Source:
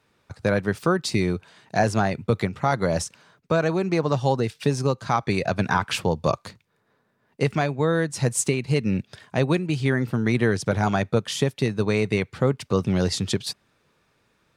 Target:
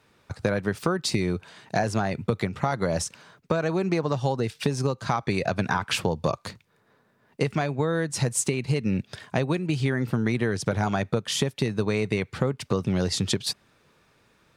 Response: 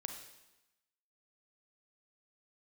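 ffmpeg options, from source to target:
-af "acompressor=threshold=-25dB:ratio=6,volume=4dB"

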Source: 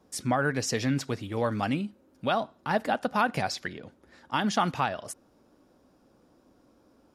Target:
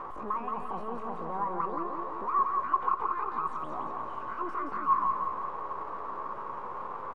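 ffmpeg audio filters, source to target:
ffmpeg -i in.wav -af "aeval=exprs='val(0)+0.5*0.0224*sgn(val(0))':channel_layout=same,highpass=94,acompressor=threshold=-26dB:ratio=8,alimiter=level_in=1.5dB:limit=-24dB:level=0:latency=1:release=14,volume=-1.5dB,asoftclip=type=tanh:threshold=-32.5dB,crystalizer=i=1:c=0,aeval=exprs='0.0668*(cos(1*acos(clip(val(0)/0.0668,-1,1)))-cos(1*PI/2))+0.00944*(cos(4*acos(clip(val(0)/0.0668,-1,1)))-cos(4*PI/2))+0.000531*(cos(5*acos(clip(val(0)/0.0668,-1,1)))-cos(5*PI/2))+0.00944*(cos(7*acos(clip(val(0)/0.0668,-1,1)))-cos(7*PI/2))+0.000473*(cos(8*acos(clip(val(0)/0.0668,-1,1)))-cos(8*PI/2))':channel_layout=same,asetrate=74167,aresample=44100,atempo=0.594604,lowpass=frequency=1100:width_type=q:width=13,aecho=1:1:173|346|519|692|865|1038|1211:0.596|0.316|0.167|0.0887|0.047|0.0249|0.0132" out.wav

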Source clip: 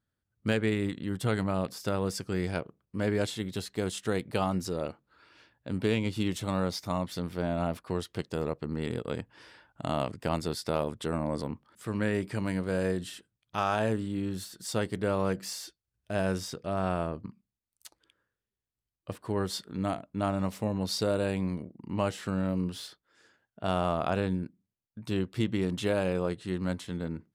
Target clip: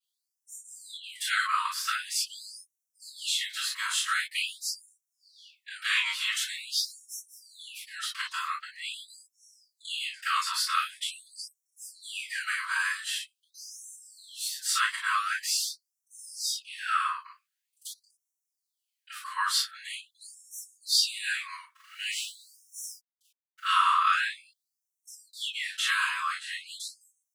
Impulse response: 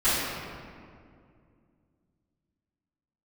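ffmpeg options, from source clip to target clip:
-filter_complex "[0:a]asettb=1/sr,asplit=3[link_01][link_02][link_03];[link_01]atrim=end=21.744[link_04];[link_02]atrim=start=21.74:end=23.69,asetpts=PTS-STARTPTS,afade=type=in:duration=0.004:curve=qsin,afade=type=out:start_time=1.946:duration=0.004:curve=qsin,aeval=exprs='val(0)*gte(abs(val(0)),0.00237)':channel_layout=same[link_05];[link_03]atrim=start=23.686[link_06];[link_04][link_05]acrossfade=duration=0.004:curve1=hsin:curve2=qsin[link_07];[link_07][link_06]acrossfade=duration=0.004:curve1=qsin:curve2=hsin[link_08];[1:a]atrim=start_sample=2205,atrim=end_sample=3087[link_09];[link_08][link_09]afir=irnorm=-1:irlink=0,afftfilt=real='re*gte(b*sr/1024,930*pow(5500/930,0.5+0.5*sin(2*PI*0.45*pts/sr)))':imag='im*gte(b*sr/1024,930*pow(5500/930,0.5+0.5*sin(2*PI*0.45*pts/sr)))':win_size=1024:overlap=0.75"

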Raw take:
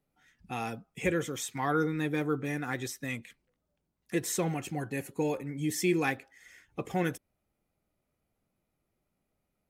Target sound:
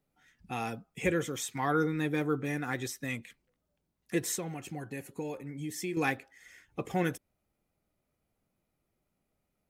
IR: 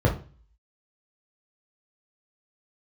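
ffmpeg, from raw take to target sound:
-filter_complex "[0:a]asettb=1/sr,asplit=3[link_01][link_02][link_03];[link_01]atrim=end=4.354[link_04];[link_02]atrim=start=4.35:end=5.97,asetpts=PTS-STARTPTS,afade=type=in:duration=0.004:curve=qsin,afade=type=out:start_time=1.616:duration=0.004:curve=qsin,acompressor=threshold=-40dB:ratio=2[link_05];[link_03]atrim=start=5.966[link_06];[link_04][link_05]acrossfade=duration=0.004:curve1=hsin:curve2=qsin[link_07];[link_07][link_06]acrossfade=duration=0.004:curve1=qsin:curve2=hsin"

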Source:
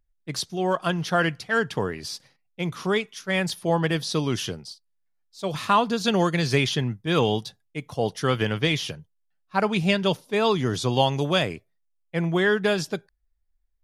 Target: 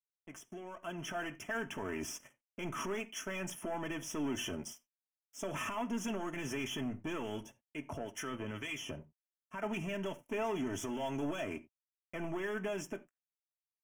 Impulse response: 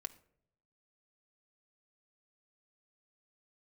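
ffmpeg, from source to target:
-filter_complex "[0:a]highpass=52,highshelf=frequency=6900:gain=-6.5,aecho=1:1:3.3:0.48,acompressor=threshold=-32dB:ratio=8,alimiter=level_in=6.5dB:limit=-24dB:level=0:latency=1:release=26,volume=-6.5dB,dynaudnorm=framelen=160:gausssize=13:maxgain=11.5dB,aeval=exprs='sgn(val(0))*max(abs(val(0))-0.00398,0)':channel_layout=same,asettb=1/sr,asplit=3[link_01][link_02][link_03];[link_01]atrim=end=7.424[link_04];[link_02]atrim=start=7.42:end=9.63,asetpts=PTS-STARTPTS,afade=type=in:duration=0.004:curve=qsin,afade=type=out:start_time=2.206:duration=0.004:curve=qsin,acrossover=split=890[link_05][link_06];[link_05]aeval=exprs='val(0)*(1-0.7/2+0.7/2*cos(2*PI*2*n/s))':channel_layout=same[link_07];[link_06]aeval=exprs='val(0)*(1-0.7/2-0.7/2*cos(2*PI*2*n/s))':channel_layout=same[link_08];[link_07][link_08]amix=inputs=2:normalize=0[link_09];[link_03]atrim=start=9.626[link_10];[link_04][link_09]acrossfade=duration=0.004:curve1=hsin:curve2=qsin[link_11];[link_11][link_10]acrossfade=duration=0.004:curve1=qsin:curve2=hsin,asoftclip=type=tanh:threshold=-27.5dB,asuperstop=centerf=4200:order=8:qfactor=1.8[link_12];[1:a]atrim=start_sample=2205,atrim=end_sample=4410[link_13];[link_12][link_13]afir=irnorm=-1:irlink=0,volume=-1.5dB"

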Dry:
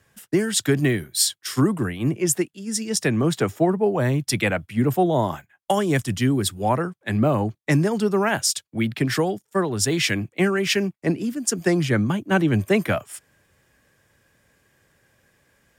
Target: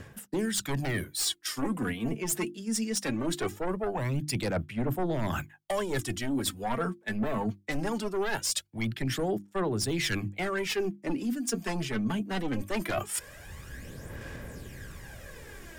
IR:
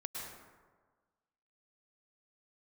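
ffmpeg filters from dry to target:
-filter_complex "[0:a]aeval=exprs='0.473*(cos(1*acos(clip(val(0)/0.473,-1,1)))-cos(1*PI/2))+0.211*(cos(5*acos(clip(val(0)/0.473,-1,1)))-cos(5*PI/2))':channel_layout=same,asubboost=boost=2.5:cutoff=61,bandreject=frequency=50:width_type=h:width=6,bandreject=frequency=100:width_type=h:width=6,bandreject=frequency=150:width_type=h:width=6,bandreject=frequency=200:width_type=h:width=6,bandreject=frequency=250:width_type=h:width=6,bandreject=frequency=300:width_type=h:width=6,bandreject=frequency=350:width_type=h:width=6,acrossover=split=450|910[link_01][link_02][link_03];[link_01]acompressor=mode=upward:threshold=-43dB:ratio=2.5[link_04];[link_04][link_02][link_03]amix=inputs=3:normalize=0,aphaser=in_gain=1:out_gain=1:delay=4.6:decay=0.54:speed=0.21:type=sinusoidal,areverse,acompressor=threshold=-35dB:ratio=4,areverse,volume=2.5dB"

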